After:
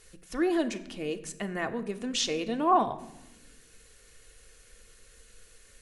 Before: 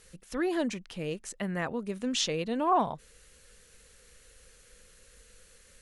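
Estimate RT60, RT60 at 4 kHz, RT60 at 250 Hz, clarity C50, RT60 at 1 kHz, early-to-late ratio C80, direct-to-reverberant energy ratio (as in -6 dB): 0.90 s, 0.70 s, 1.6 s, 14.5 dB, 0.85 s, 16.5 dB, 6.0 dB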